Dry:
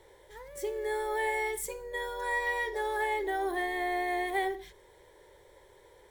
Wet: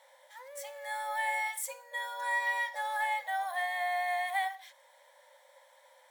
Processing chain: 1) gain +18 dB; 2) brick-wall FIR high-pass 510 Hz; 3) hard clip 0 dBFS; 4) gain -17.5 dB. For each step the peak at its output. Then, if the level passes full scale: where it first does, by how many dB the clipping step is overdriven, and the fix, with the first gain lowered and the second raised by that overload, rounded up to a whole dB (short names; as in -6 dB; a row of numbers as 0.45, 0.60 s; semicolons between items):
-0.5, -3.0, -3.0, -20.5 dBFS; no overload